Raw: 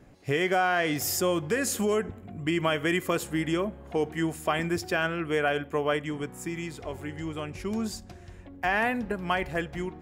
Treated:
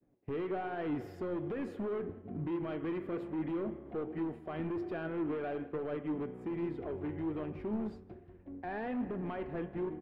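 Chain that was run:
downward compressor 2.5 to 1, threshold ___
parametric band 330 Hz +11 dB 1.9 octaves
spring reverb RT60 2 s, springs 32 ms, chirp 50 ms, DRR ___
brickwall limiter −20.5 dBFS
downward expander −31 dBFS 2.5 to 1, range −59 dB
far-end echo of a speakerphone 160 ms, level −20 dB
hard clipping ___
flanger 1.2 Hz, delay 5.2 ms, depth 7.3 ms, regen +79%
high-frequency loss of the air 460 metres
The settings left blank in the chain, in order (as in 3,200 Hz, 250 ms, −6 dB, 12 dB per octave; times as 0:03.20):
−36 dBFS, 13 dB, −27.5 dBFS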